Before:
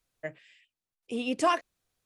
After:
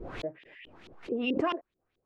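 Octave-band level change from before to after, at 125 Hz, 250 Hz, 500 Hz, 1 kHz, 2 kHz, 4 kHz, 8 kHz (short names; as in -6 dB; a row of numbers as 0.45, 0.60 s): n/a, +1.5 dB, -1.0 dB, -7.0 dB, -2.5 dB, -1.5 dB, under -15 dB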